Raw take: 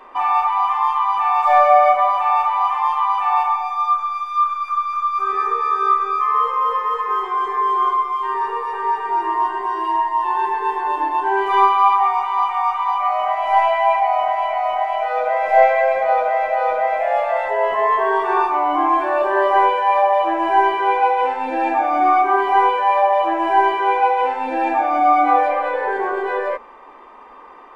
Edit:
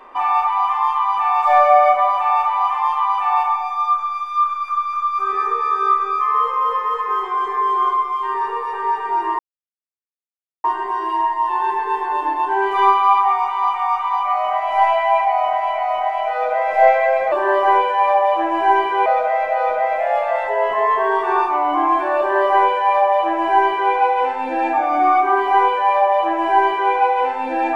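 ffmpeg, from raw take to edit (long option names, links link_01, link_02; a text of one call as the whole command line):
ffmpeg -i in.wav -filter_complex "[0:a]asplit=4[link_01][link_02][link_03][link_04];[link_01]atrim=end=9.39,asetpts=PTS-STARTPTS,afade=type=out:start_time=9.386:duration=0.004:curve=hsin,apad=pad_dur=1.25[link_05];[link_02]atrim=start=9.39:end=16.072,asetpts=PTS-STARTPTS,afade=type=in:duration=0.004:curve=hsin[link_06];[link_03]atrim=start=19.198:end=20.942[link_07];[link_04]atrim=start=16.068[link_08];[link_05][link_06]concat=n=2:v=0:a=1[link_09];[link_09][link_07]acrossfade=duration=0.004:curve1=hsin:curve2=hsin[link_10];[link_10][link_08]acrossfade=duration=0.004:curve1=hsin:curve2=hsin" out.wav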